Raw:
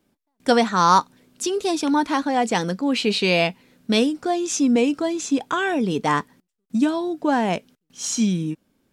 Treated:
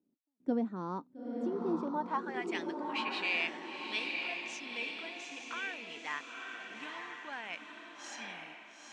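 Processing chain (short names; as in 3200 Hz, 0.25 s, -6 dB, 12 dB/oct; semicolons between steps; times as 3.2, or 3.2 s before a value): band-pass sweep 280 Hz -> 2300 Hz, 1.64–2.47; diffused feedback echo 0.903 s, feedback 43%, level -3 dB; gain -8 dB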